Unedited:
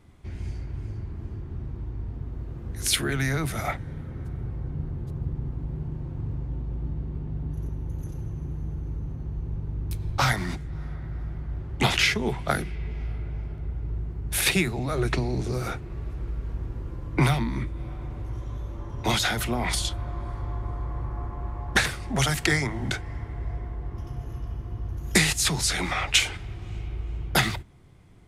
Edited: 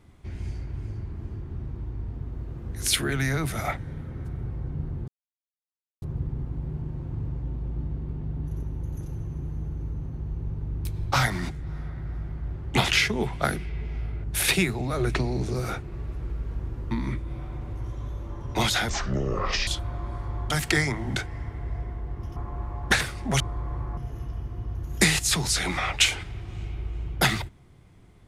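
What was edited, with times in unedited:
5.08 insert silence 0.94 s
13.3–14.22 cut
16.89–17.4 cut
19.38–19.81 speed 55%
20.64–21.21 swap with 22.25–24.11

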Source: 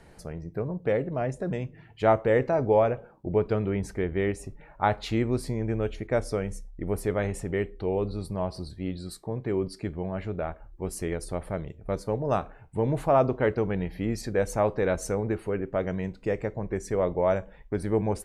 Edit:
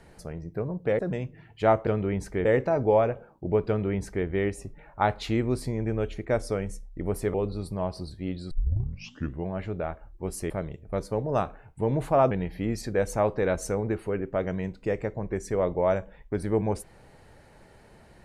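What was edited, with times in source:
0.99–1.39 cut
3.5–4.08 copy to 2.27
7.16–7.93 cut
9.1 tape start 0.95 s
11.09–11.46 cut
13.27–13.71 cut

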